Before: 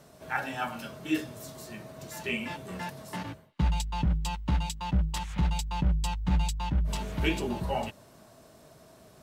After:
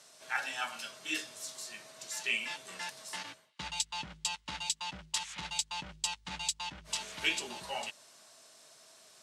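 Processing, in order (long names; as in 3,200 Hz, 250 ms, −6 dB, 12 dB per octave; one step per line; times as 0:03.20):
meter weighting curve ITU-R 468
level −5.5 dB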